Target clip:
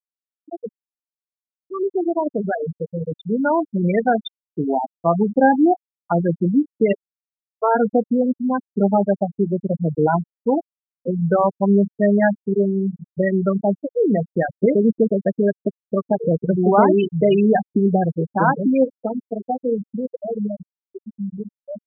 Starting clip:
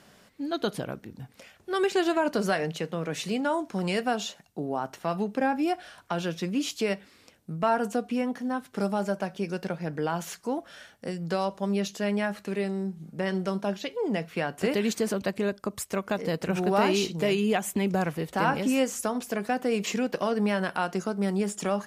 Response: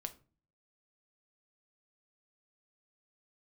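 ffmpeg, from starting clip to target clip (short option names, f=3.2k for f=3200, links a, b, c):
-filter_complex "[0:a]dynaudnorm=f=290:g=21:m=11.5dB,asplit=3[a][b][c];[a]afade=t=out:st=6.92:d=0.02[d];[b]highpass=f=350:w=0.5412,highpass=f=350:w=1.3066,equalizer=f=440:t=q:w=4:g=4,equalizer=f=700:t=q:w=4:g=-10,equalizer=f=1.3k:t=q:w=4:g=-5,lowpass=f=2k:w=0.5412,lowpass=f=2k:w=1.3066,afade=t=in:st=6.92:d=0.02,afade=t=out:st=7.74:d=0.02[e];[c]afade=t=in:st=7.74:d=0.02[f];[d][e][f]amix=inputs=3:normalize=0,asplit=2[g][h];[h]adelay=214,lowpass=f=1.1k:p=1,volume=-23dB,asplit=2[i][j];[j]adelay=214,lowpass=f=1.1k:p=1,volume=0.31[k];[g][i][k]amix=inputs=3:normalize=0,asplit=2[l][m];[1:a]atrim=start_sample=2205[n];[m][n]afir=irnorm=-1:irlink=0,volume=0.5dB[o];[l][o]amix=inputs=2:normalize=0,afftfilt=real='re*gte(hypot(re,im),0.708)':imag='im*gte(hypot(re,im),0.708)':win_size=1024:overlap=0.75,volume=-3dB"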